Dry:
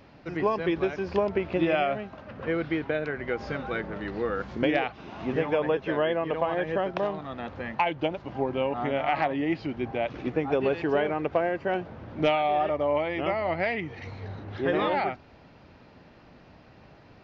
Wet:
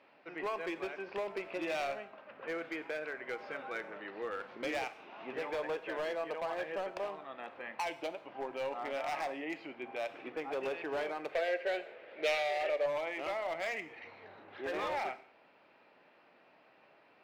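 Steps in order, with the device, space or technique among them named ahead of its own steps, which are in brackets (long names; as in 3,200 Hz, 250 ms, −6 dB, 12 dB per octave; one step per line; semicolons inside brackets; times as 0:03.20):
megaphone (band-pass filter 450–3,400 Hz; parametric band 2,500 Hz +4.5 dB 0.46 octaves; hard clipping −24.5 dBFS, distortion −11 dB)
0:11.29–0:12.86: graphic EQ with 10 bands 125 Hz −10 dB, 250 Hz −9 dB, 500 Hz +11 dB, 1,000 Hz −10 dB, 2,000 Hz +9 dB, 4,000 Hz +5 dB
reverb whose tail is shaped and stops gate 220 ms falling, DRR 11.5 dB
level −7.5 dB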